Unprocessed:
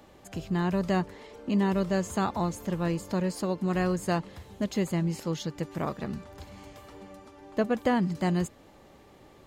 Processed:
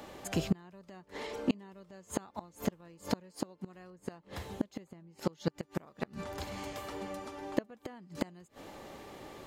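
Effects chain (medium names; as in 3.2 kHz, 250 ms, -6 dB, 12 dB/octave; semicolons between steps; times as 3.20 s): inverted gate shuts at -21 dBFS, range -31 dB; bass shelf 180 Hz -8 dB; 3.90–5.53 s: tape noise reduction on one side only decoder only; trim +7.5 dB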